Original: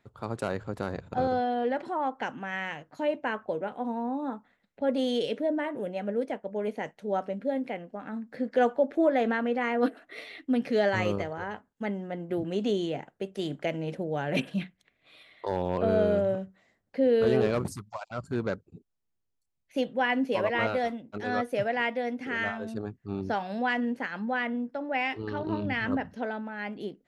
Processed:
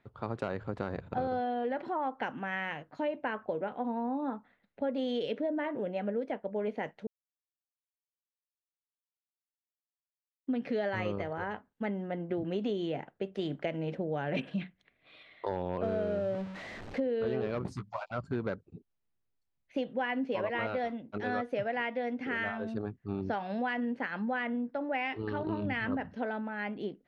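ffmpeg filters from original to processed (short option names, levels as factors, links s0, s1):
-filter_complex "[0:a]asettb=1/sr,asplit=3[s0][s1][s2];[s0]atrim=end=15.834[s3];[s1]atrim=start=15.83:end=17,asetpts=PTS-STARTPTS,afade=t=in:d=0.004:c=qsin,afade=t=out:st=1.166:d=0.004:c=qsin,aeval=exprs='val(0)+0.5*0.0133*sgn(val(0))':c=same[s4];[s2]atrim=start=16.996[s5];[s3][s4]acrossfade=d=0.004:c1=hsin:c2=qsin[s6];[s6][s5]acrossfade=d=0.004:c1=qsin:c2=hsin,asettb=1/sr,asplit=3[s7][s8][s9];[s7]atrim=end=17.654[s10];[s8]atrim=start=17.65:end=18.15,asetpts=PTS-STARTPTS,afade=t=in:d=0.004:c=qsin,afade=t=out:st=0.496:d=0.004:c=qsin,asplit=2[s11][s12];[s12]adelay=16,volume=0.473[s13];[s11][s13]amix=inputs=2:normalize=0,atrim=end_sample=22050[s14];[s9]atrim=start=18.146[s15];[s10][s14]acrossfade=d=0.004:c1=hsin:c2=qsin[s16];[s16][s15]acrossfade=d=0.004:c1=qsin:c2=hsin,asplit=3[s17][s18][s19];[s17]atrim=end=7.07,asetpts=PTS-STARTPTS,afade=t=out:st=7.066:d=0.004:c=hsin[s20];[s18]atrim=start=7.07:end=10.47,asetpts=PTS-STARTPTS,volume=0[s21];[s19]atrim=start=10.47,asetpts=PTS-STARTPTS,afade=t=in:d=0.004:c=hsin[s22];[s20][s21][s22]concat=n=3:v=0:a=1,lowpass=3600,acompressor=threshold=0.0355:ratio=6"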